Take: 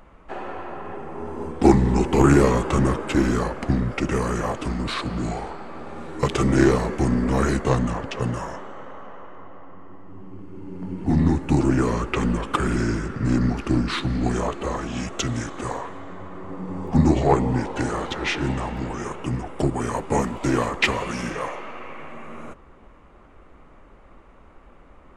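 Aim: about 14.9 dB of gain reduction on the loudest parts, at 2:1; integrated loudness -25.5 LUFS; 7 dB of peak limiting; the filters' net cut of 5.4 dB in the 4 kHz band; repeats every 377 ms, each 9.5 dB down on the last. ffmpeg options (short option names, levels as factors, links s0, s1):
-af "equalizer=f=4000:t=o:g=-7.5,acompressor=threshold=0.0126:ratio=2,alimiter=limit=0.0668:level=0:latency=1,aecho=1:1:377|754|1131|1508:0.335|0.111|0.0365|0.012,volume=3.16"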